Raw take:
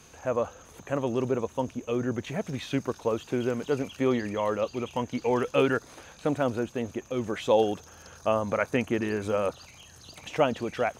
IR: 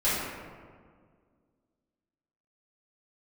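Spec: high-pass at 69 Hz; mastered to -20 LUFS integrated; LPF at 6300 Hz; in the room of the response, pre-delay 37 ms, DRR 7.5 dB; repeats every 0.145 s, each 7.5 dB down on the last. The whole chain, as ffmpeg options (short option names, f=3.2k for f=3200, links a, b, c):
-filter_complex "[0:a]highpass=69,lowpass=6.3k,aecho=1:1:145|290|435|580|725:0.422|0.177|0.0744|0.0312|0.0131,asplit=2[a][b];[1:a]atrim=start_sample=2205,adelay=37[c];[b][c]afir=irnorm=-1:irlink=0,volume=-20.5dB[d];[a][d]amix=inputs=2:normalize=0,volume=7.5dB"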